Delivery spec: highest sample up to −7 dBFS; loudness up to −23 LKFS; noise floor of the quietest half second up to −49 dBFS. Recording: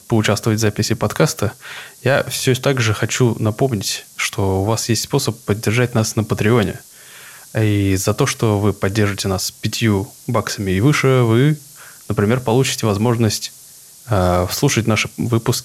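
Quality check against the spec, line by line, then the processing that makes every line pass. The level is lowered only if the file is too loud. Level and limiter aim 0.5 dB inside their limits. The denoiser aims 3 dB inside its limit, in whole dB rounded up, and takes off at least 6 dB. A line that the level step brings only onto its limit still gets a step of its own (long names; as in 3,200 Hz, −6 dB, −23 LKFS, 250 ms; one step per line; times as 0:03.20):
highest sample −3.0 dBFS: out of spec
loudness −17.5 LKFS: out of spec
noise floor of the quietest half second −42 dBFS: out of spec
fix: broadband denoise 6 dB, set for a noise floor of −42 dBFS
level −6 dB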